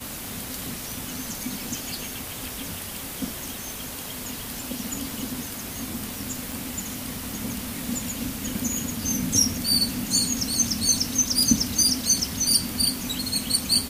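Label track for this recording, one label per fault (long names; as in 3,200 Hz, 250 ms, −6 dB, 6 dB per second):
6.520000	6.520000	click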